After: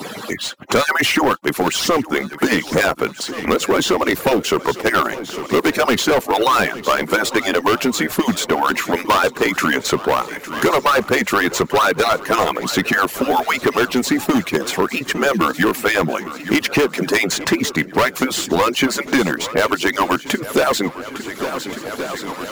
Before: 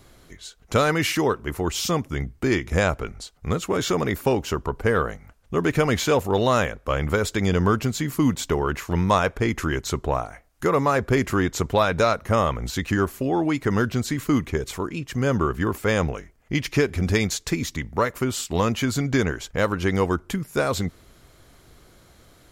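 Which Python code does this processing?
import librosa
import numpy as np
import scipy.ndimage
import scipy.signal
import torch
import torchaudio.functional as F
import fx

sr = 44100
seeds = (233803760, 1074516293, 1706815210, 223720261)

p1 = fx.hpss_only(x, sr, part='percussive')
p2 = scipy.signal.sosfilt(scipy.signal.butter(2, 220.0, 'highpass', fs=sr, output='sos'), p1)
p3 = fx.sample_hold(p2, sr, seeds[0], rate_hz=14000.0, jitter_pct=0)
p4 = p2 + F.gain(torch.from_numpy(p3), -7.0).numpy()
p5 = np.clip(p4, -10.0 ** (-19.5 / 20.0), 10.0 ** (-19.5 / 20.0))
p6 = p5 + fx.echo_swing(p5, sr, ms=1427, ratio=1.5, feedback_pct=40, wet_db=-19.0, dry=0)
p7 = fx.band_squash(p6, sr, depth_pct=70)
y = F.gain(torch.from_numpy(p7), 9.0).numpy()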